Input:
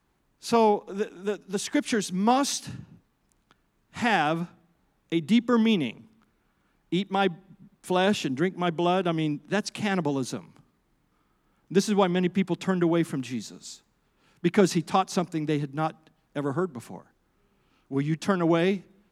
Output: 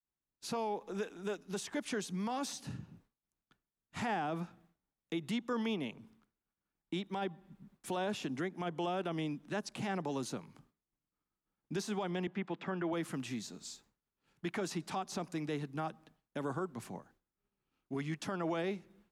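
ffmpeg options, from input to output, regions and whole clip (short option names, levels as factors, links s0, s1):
-filter_complex "[0:a]asettb=1/sr,asplit=3[s0][s1][s2];[s0]atrim=end=12.274[s3];[s1]atrim=start=12.27:end=12.93,asetpts=PTS-STARTPTS,afade=t=in:d=0.004:c=qsin,afade=t=out:st=0.656:d=0.004:c=qsin,acrossover=split=2600[s4][s5];[s5]acompressor=threshold=0.00398:ratio=4:attack=1:release=60[s6];[s4][s6]amix=inputs=2:normalize=0,highpass=170,lowpass=3500[s7];[s2]atrim=start=12.926[s8];[s3][s7]acrossfade=d=0.004:c1=hsin:c2=qsin[s9];[s9][s8]acrossfade=d=0.004:c1=qsin:c2=hsin,agate=range=0.0224:threshold=0.00178:ratio=3:detection=peak,acrossover=split=540|1200[s10][s11][s12];[s10]acompressor=threshold=0.0224:ratio=4[s13];[s11]acompressor=threshold=0.0316:ratio=4[s14];[s12]acompressor=threshold=0.0112:ratio=4[s15];[s13][s14][s15]amix=inputs=3:normalize=0,alimiter=limit=0.0631:level=0:latency=1:release=16,volume=0.631"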